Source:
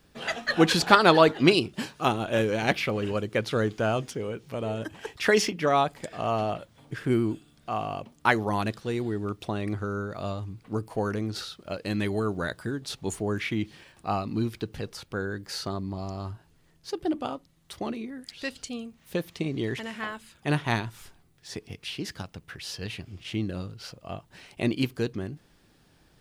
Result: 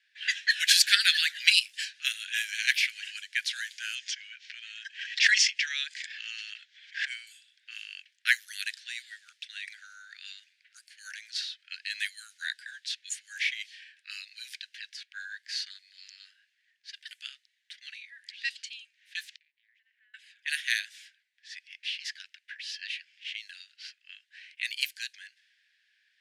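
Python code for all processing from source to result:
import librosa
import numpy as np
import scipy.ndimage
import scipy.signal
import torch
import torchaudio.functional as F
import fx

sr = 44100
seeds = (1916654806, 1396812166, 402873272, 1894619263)

y = fx.chain(x, sr, fx.lowpass(hz=6700.0, slope=24),
    fx.pre_swell(db_per_s=110.0), at=(3.95, 7.27))
y = fx.chain(y, sr, fx.highpass(hz=110.0, slope=12),
    fx.gate_flip(shuts_db=-30.0, range_db=-31),
    fx.doppler_dist(depth_ms=0.4), at=(19.23, 20.14))
y = fx.env_lowpass(y, sr, base_hz=2100.0, full_db=-21.0)
y = scipy.signal.sosfilt(scipy.signal.butter(16, 1600.0, 'highpass', fs=sr, output='sos'), y)
y = fx.high_shelf(y, sr, hz=4400.0, db=8.0)
y = F.gain(torch.from_numpy(y), 2.5).numpy()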